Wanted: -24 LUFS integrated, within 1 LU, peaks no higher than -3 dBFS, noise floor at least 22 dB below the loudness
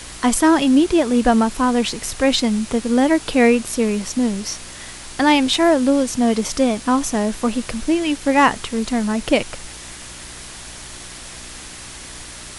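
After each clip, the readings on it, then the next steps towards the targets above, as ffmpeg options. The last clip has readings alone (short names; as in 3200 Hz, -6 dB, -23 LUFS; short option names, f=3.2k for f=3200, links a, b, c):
hum 60 Hz; harmonics up to 360 Hz; hum level -43 dBFS; noise floor -36 dBFS; noise floor target -40 dBFS; loudness -18.0 LUFS; peak -2.5 dBFS; loudness target -24.0 LUFS
-> -af "bandreject=f=60:t=h:w=4,bandreject=f=120:t=h:w=4,bandreject=f=180:t=h:w=4,bandreject=f=240:t=h:w=4,bandreject=f=300:t=h:w=4,bandreject=f=360:t=h:w=4"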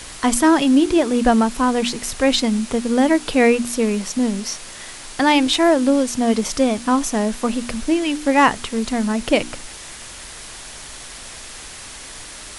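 hum none; noise floor -36 dBFS; noise floor target -40 dBFS
-> -af "afftdn=nr=6:nf=-36"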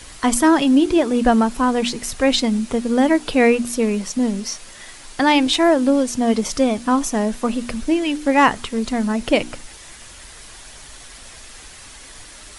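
noise floor -41 dBFS; loudness -18.0 LUFS; peak -2.5 dBFS; loudness target -24.0 LUFS
-> -af "volume=-6dB"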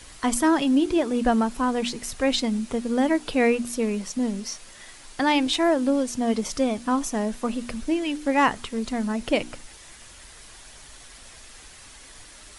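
loudness -24.0 LUFS; peak -8.5 dBFS; noise floor -47 dBFS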